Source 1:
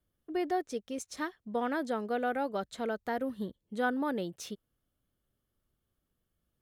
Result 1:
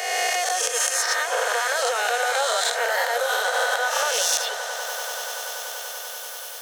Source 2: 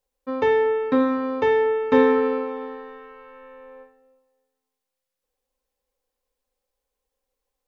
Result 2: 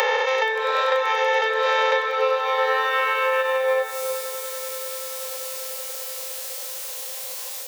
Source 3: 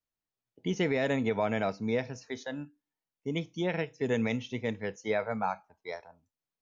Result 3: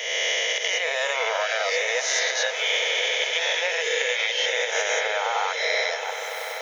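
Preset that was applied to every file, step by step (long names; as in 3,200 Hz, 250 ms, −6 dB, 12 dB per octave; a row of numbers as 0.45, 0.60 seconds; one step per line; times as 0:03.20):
peak hold with a rise ahead of every peak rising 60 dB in 2.68 s
camcorder AGC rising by 39 dB per second
reverb reduction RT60 0.98 s
Butterworth high-pass 490 Hz 72 dB per octave
parametric band 720 Hz −13 dB 2.8 octaves
downward compressor 6 to 1, threshold −42 dBFS
echo that builds up and dies away 96 ms, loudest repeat 8, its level −17.5 dB
loudness normalisation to −23 LKFS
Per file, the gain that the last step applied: +21.0, +23.0, +19.5 decibels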